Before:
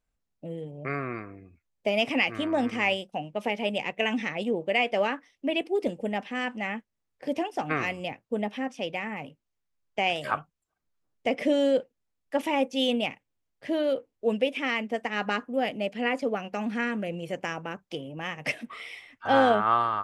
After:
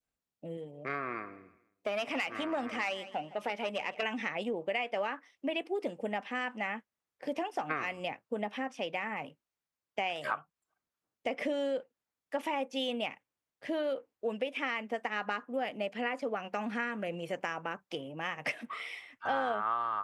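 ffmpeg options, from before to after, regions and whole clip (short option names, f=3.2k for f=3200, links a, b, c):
-filter_complex "[0:a]asettb=1/sr,asplit=3[a][b][c];[a]atrim=end=0.574[d];[b]atrim=start=0.57:end=4.03,asetpts=PTS-STARTPTS,afade=t=in:d=0.004:c=qsin,afade=t=out:st=3.456:d=0.004:c=qsin,equalizer=f=92:t=o:w=1.5:g=-6,aeval=exprs='(tanh(8.91*val(0)+0.3)-tanh(0.3))/8.91':c=same,aecho=1:1:162|324|486:0.106|0.0424|0.0169,atrim=end_sample=152586[e];[c]atrim=start=4.026[f];[d][e]acrossfade=d=0.004:c1=hsin:c2=qsin[g];[g][f]acrossfade=d=0.004:c1=qsin:c2=hsin,highpass=f=180:p=1,adynamicequalizer=threshold=0.00891:dfrequency=1200:dqfactor=0.77:tfrequency=1200:tqfactor=0.77:attack=5:release=100:ratio=0.375:range=3.5:mode=boostabove:tftype=bell,acompressor=threshold=-28dB:ratio=4,volume=-3dB"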